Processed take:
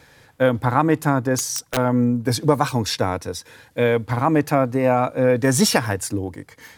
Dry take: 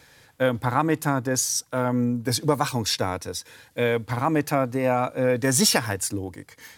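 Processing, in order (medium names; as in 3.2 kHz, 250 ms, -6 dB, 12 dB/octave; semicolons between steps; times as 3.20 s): treble shelf 2.3 kHz -6.5 dB; 1.35–1.77 s: integer overflow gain 20 dB; trim +5 dB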